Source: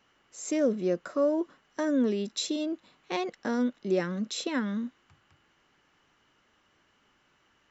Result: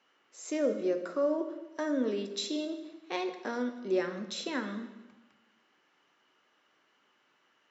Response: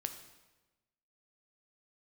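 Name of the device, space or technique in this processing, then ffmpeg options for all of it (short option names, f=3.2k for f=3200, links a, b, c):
supermarket ceiling speaker: -filter_complex "[0:a]highpass=290,lowpass=6.3k[a];[1:a]atrim=start_sample=2205[b];[a][b]afir=irnorm=-1:irlink=0,volume=-1dB"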